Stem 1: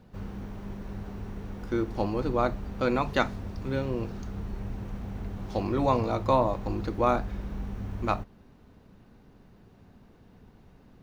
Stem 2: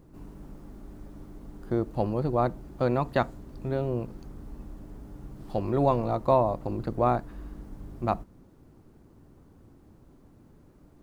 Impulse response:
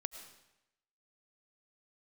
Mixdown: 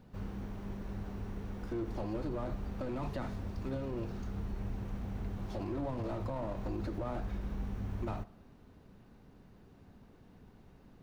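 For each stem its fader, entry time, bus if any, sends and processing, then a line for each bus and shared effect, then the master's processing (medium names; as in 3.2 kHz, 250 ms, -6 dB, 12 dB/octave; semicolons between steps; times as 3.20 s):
-3.5 dB, 0.00 s, no send, slew-rate limiter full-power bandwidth 16 Hz
-15.0 dB, 0.00 s, send -10 dB, none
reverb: on, RT60 0.90 s, pre-delay 65 ms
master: peak limiter -28.5 dBFS, peak gain reduction 10.5 dB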